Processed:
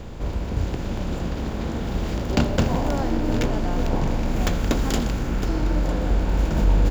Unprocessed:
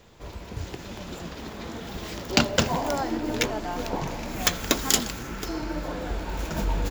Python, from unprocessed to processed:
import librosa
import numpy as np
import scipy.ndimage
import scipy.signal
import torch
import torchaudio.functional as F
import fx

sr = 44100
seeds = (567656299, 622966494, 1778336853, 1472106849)

p1 = fx.bin_compress(x, sr, power=0.6)
p2 = fx.tilt_eq(p1, sr, slope=-3.0)
p3 = p2 + fx.echo_single(p2, sr, ms=953, db=-16.5, dry=0)
y = p3 * librosa.db_to_amplitude(-5.0)